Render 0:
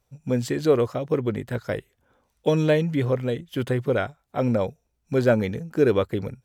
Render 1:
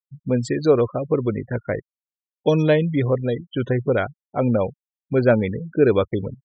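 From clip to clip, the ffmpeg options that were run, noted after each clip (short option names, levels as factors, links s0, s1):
-af "afftfilt=real='re*gte(hypot(re,im),0.0251)':imag='im*gte(hypot(re,im),0.0251)':win_size=1024:overlap=0.75,volume=1.41"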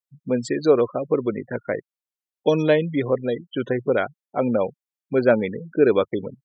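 -af "highpass=210"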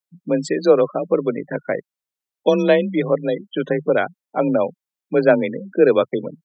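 -af "afreqshift=30,volume=1.41"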